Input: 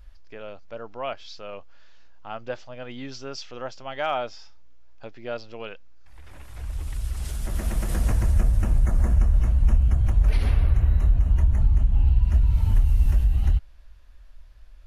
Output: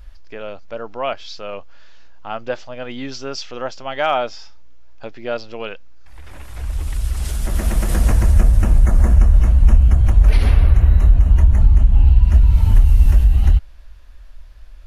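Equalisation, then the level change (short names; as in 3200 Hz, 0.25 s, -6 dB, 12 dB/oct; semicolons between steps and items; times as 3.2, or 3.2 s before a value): bell 120 Hz -4.5 dB 0.43 oct; +8.0 dB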